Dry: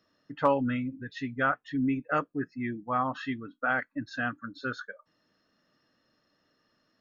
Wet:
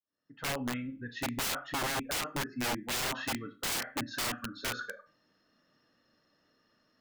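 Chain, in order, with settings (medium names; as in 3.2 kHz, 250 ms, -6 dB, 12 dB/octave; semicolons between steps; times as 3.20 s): fade-in on the opening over 1.36 s; Schroeder reverb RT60 0.35 s, combs from 26 ms, DRR 9.5 dB; integer overflow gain 28 dB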